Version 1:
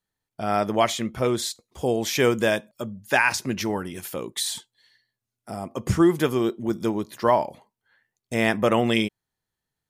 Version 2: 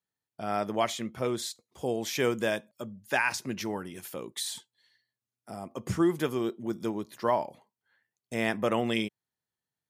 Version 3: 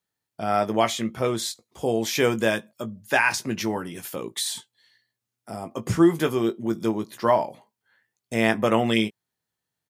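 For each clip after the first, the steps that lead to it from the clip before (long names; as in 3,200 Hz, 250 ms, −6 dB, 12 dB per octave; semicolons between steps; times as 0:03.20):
high-pass filter 100 Hz; level −7 dB
double-tracking delay 18 ms −9 dB; level +6 dB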